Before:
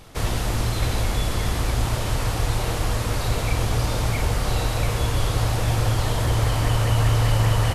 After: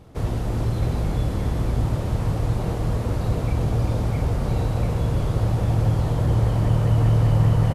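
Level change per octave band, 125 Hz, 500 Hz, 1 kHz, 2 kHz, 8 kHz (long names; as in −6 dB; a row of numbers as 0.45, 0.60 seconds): +2.0, −0.5, −4.5, −9.5, −13.0 decibels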